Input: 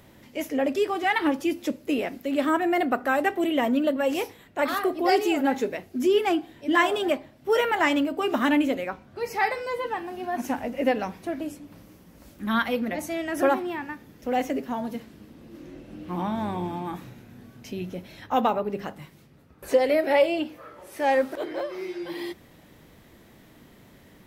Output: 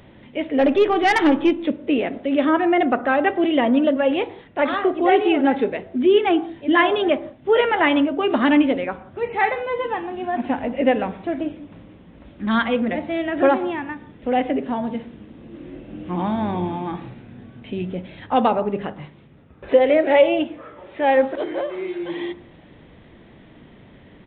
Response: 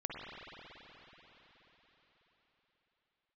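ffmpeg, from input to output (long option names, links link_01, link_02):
-filter_complex "[0:a]aresample=8000,aresample=44100,asplit=3[link_01][link_02][link_03];[link_01]afade=type=out:start_time=0.58:duration=0.02[link_04];[link_02]aeval=exprs='0.282*(cos(1*acos(clip(val(0)/0.282,-1,1)))-cos(1*PI/2))+0.0355*(cos(5*acos(clip(val(0)/0.282,-1,1)))-cos(5*PI/2))+0.00631*(cos(6*acos(clip(val(0)/0.282,-1,1)))-cos(6*PI/2))':channel_layout=same,afade=type=in:start_time=0.58:duration=0.02,afade=type=out:start_time=1.5:duration=0.02[link_05];[link_03]afade=type=in:start_time=1.5:duration=0.02[link_06];[link_04][link_05][link_06]amix=inputs=3:normalize=0,asplit=2[link_07][link_08];[1:a]atrim=start_sample=2205,afade=type=out:start_time=0.23:duration=0.01,atrim=end_sample=10584,lowpass=frequency=1400:width=0.5412,lowpass=frequency=1400:width=1.3066[link_09];[link_08][link_09]afir=irnorm=-1:irlink=0,volume=-10dB[link_10];[link_07][link_10]amix=inputs=2:normalize=0,volume=4.5dB"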